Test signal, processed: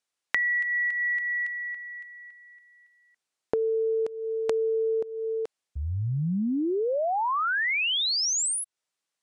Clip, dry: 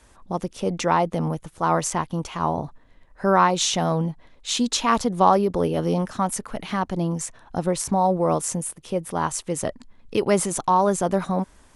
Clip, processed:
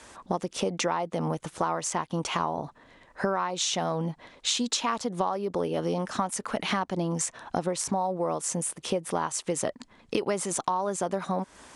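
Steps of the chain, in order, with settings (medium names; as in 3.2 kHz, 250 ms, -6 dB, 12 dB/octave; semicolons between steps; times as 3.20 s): high-pass 290 Hz 6 dB/octave; compression 12:1, threshold -33 dBFS; low-pass 9.6 kHz 24 dB/octave; trim +8.5 dB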